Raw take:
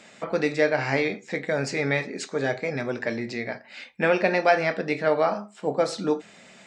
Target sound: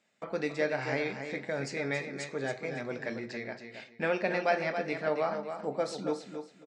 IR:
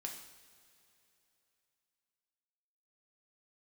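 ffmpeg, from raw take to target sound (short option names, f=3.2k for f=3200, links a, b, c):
-filter_complex "[0:a]agate=range=-16dB:threshold=-45dB:ratio=16:detection=peak,asplit=2[a][b];[b]aecho=0:1:275|550|825:0.398|0.0995|0.0249[c];[a][c]amix=inputs=2:normalize=0,volume=-8.5dB"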